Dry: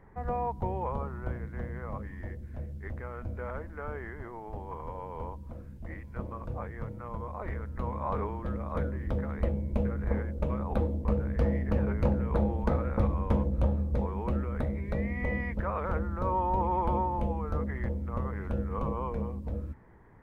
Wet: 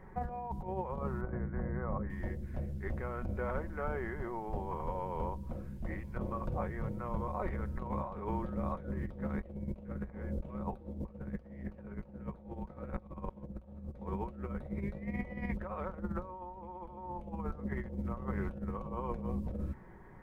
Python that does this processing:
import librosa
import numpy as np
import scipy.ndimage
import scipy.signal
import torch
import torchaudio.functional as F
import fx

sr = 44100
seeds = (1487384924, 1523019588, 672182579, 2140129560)

y = fx.lowpass(x, sr, hz=1800.0, slope=24, at=(1.21, 2.1))
y = fx.over_compress(y, sr, threshold_db=-35.0, ratio=-0.5)
y = fx.dynamic_eq(y, sr, hz=1700.0, q=1.1, threshold_db=-53.0, ratio=4.0, max_db=-3)
y = y + 0.39 * np.pad(y, (int(5.4 * sr / 1000.0), 0))[:len(y)]
y = y * 10.0 ** (-2.0 / 20.0)